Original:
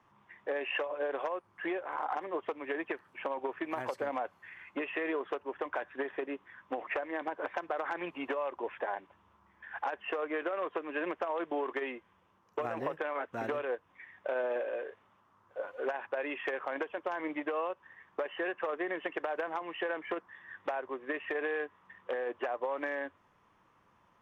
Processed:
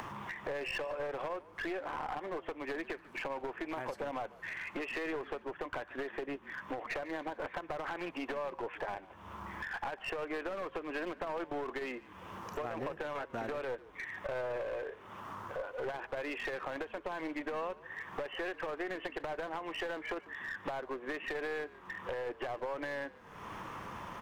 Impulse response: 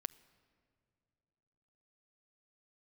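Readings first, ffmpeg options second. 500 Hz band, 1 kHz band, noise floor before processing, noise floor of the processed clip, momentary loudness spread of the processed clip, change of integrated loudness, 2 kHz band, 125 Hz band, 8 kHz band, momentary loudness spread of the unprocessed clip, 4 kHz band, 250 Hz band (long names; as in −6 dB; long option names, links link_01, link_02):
−3.5 dB, −3.0 dB, −68 dBFS, −56 dBFS, 6 LU, −3.0 dB, −1.5 dB, +6.5 dB, can't be measured, 7 LU, +1.0 dB, −2.0 dB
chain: -filter_complex "[0:a]acompressor=mode=upward:threshold=-37dB:ratio=2.5,asplit=2[link_01][link_02];[link_02]alimiter=level_in=5dB:limit=-24dB:level=0:latency=1:release=97,volume=-5dB,volume=-2dB[link_03];[link_01][link_03]amix=inputs=2:normalize=0,acompressor=threshold=-47dB:ratio=2,aeval=exprs='clip(val(0),-1,0.00841)':channel_layout=same,asplit=5[link_04][link_05][link_06][link_07][link_08];[link_05]adelay=147,afreqshift=-50,volume=-19.5dB[link_09];[link_06]adelay=294,afreqshift=-100,volume=-25.7dB[link_10];[link_07]adelay=441,afreqshift=-150,volume=-31.9dB[link_11];[link_08]adelay=588,afreqshift=-200,volume=-38.1dB[link_12];[link_04][link_09][link_10][link_11][link_12]amix=inputs=5:normalize=0,volume=4.5dB"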